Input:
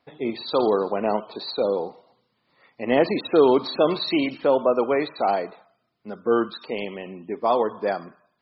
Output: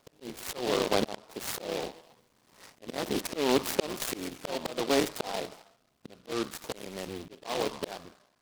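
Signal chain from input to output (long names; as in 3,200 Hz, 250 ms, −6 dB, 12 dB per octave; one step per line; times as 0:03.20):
sub-harmonics by changed cycles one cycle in 3, muted
volume swells 747 ms
short delay modulated by noise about 3,000 Hz, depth 0.1 ms
level +6 dB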